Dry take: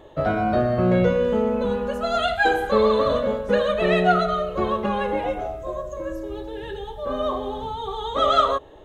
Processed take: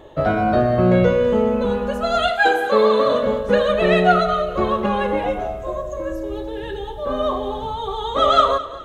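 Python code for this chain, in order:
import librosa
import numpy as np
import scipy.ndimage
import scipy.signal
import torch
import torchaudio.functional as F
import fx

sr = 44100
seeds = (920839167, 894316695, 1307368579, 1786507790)

y = fx.highpass(x, sr, hz=fx.line((2.29, 360.0), (3.21, 170.0)), slope=12, at=(2.29, 3.21), fade=0.02)
y = fx.echo_feedback(y, sr, ms=207, feedback_pct=40, wet_db=-16)
y = y * librosa.db_to_amplitude(3.5)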